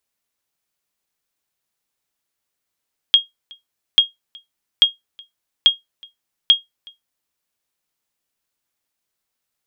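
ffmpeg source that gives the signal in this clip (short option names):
-f lavfi -i "aevalsrc='0.75*(sin(2*PI*3260*mod(t,0.84))*exp(-6.91*mod(t,0.84)/0.16)+0.0376*sin(2*PI*3260*max(mod(t,0.84)-0.37,0))*exp(-6.91*max(mod(t,0.84)-0.37,0)/0.16))':d=4.2:s=44100"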